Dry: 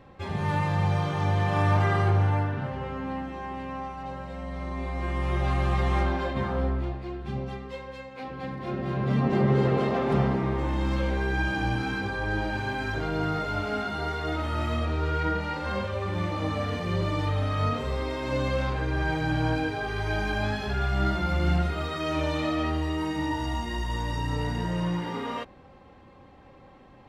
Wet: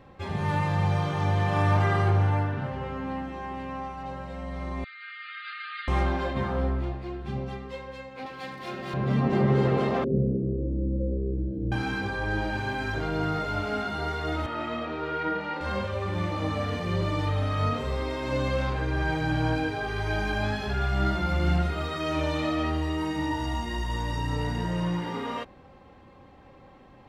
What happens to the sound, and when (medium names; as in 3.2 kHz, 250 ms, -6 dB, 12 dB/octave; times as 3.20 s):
4.84–5.88 s: brick-wall FIR band-pass 1.2–4.8 kHz
8.26–8.94 s: tilt EQ +3.5 dB/octave
10.04–11.72 s: elliptic low-pass 520 Hz
14.46–15.61 s: three-band isolator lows -23 dB, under 170 Hz, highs -14 dB, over 4.1 kHz